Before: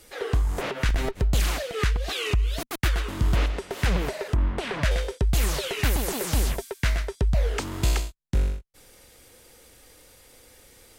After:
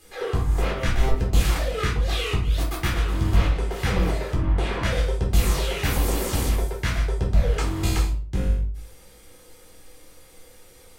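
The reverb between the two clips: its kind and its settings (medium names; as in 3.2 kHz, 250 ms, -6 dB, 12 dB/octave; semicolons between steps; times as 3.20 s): simulated room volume 370 m³, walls furnished, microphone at 3.9 m; trim -5 dB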